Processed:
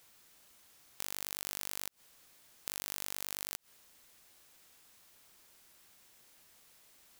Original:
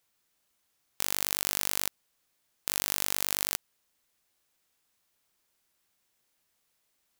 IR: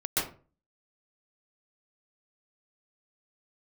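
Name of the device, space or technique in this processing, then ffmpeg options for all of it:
de-esser from a sidechain: -filter_complex "[0:a]asplit=2[a][b];[b]highpass=6.6k,apad=whole_len=317293[c];[a][c]sidechaincompress=threshold=-45dB:ratio=5:attack=1.5:release=74,volume=12.5dB"

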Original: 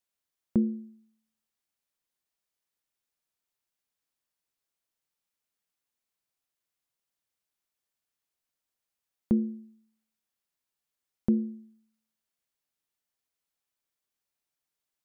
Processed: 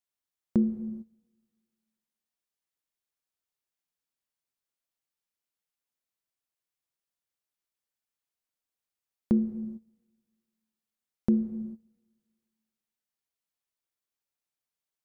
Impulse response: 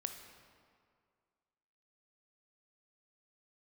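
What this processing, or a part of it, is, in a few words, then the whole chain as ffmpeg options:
keyed gated reverb: -filter_complex "[0:a]asplit=3[a][b][c];[1:a]atrim=start_sample=2205[d];[b][d]afir=irnorm=-1:irlink=0[e];[c]apad=whole_len=663492[f];[e][f]sidechaingate=range=-19dB:threshold=-56dB:ratio=16:detection=peak,volume=2.5dB[g];[a][g]amix=inputs=2:normalize=0,volume=-5.5dB"

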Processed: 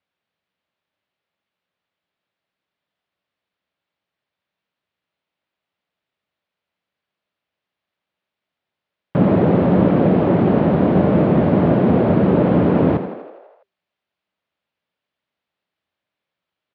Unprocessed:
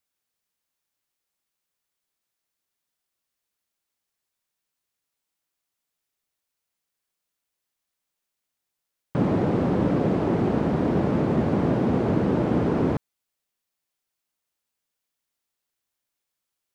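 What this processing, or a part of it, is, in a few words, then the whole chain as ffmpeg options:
frequency-shifting delay pedal into a guitar cabinet: -filter_complex "[0:a]asplit=9[a][b][c][d][e][f][g][h][i];[b]adelay=82,afreqshift=48,volume=-11dB[j];[c]adelay=164,afreqshift=96,volume=-15dB[k];[d]adelay=246,afreqshift=144,volume=-19dB[l];[e]adelay=328,afreqshift=192,volume=-23dB[m];[f]adelay=410,afreqshift=240,volume=-27.1dB[n];[g]adelay=492,afreqshift=288,volume=-31.1dB[o];[h]adelay=574,afreqshift=336,volume=-35.1dB[p];[i]adelay=656,afreqshift=384,volume=-39.1dB[q];[a][j][k][l][m][n][o][p][q]amix=inputs=9:normalize=0,highpass=80,equalizer=f=83:t=q:w=4:g=4,equalizer=f=180:t=q:w=4:g=5,equalizer=f=600:t=q:w=4:g=5,lowpass=f=3.6k:w=0.5412,lowpass=f=3.6k:w=1.3066,volume=5.5dB"

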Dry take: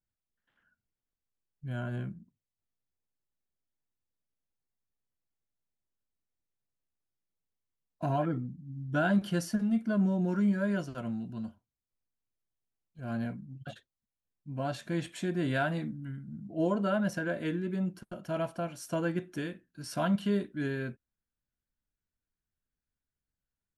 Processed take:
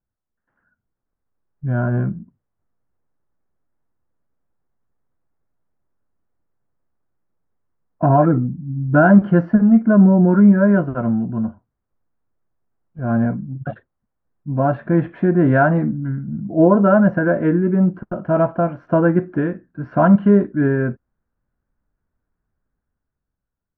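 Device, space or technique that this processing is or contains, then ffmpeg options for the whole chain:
action camera in a waterproof case: -af "lowpass=f=1.5k:w=0.5412,lowpass=f=1.5k:w=1.3066,dynaudnorm=f=210:g=11:m=9dB,volume=7.5dB" -ar 22050 -c:a aac -b:a 96k

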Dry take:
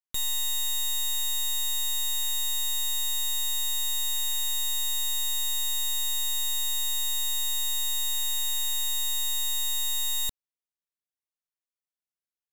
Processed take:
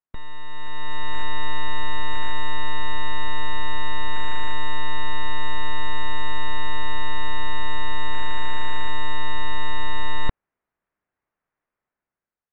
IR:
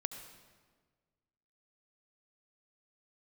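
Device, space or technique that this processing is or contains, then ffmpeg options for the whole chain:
action camera in a waterproof case: -af "lowpass=f=1.9k:w=0.5412,lowpass=f=1.9k:w=1.3066,dynaudnorm=f=240:g=7:m=13dB,volume=5.5dB" -ar 32000 -c:a aac -b:a 48k

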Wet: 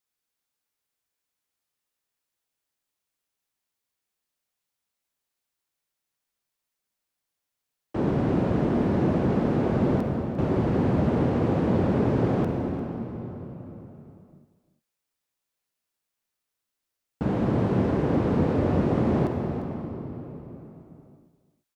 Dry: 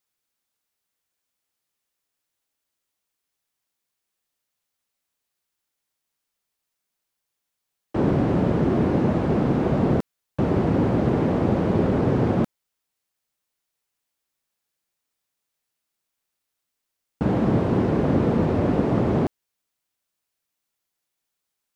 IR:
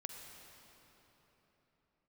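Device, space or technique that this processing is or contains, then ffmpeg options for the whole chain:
cave: -filter_complex "[0:a]aecho=1:1:348:0.2[a];[1:a]atrim=start_sample=2205[b];[a][b]afir=irnorm=-1:irlink=0"

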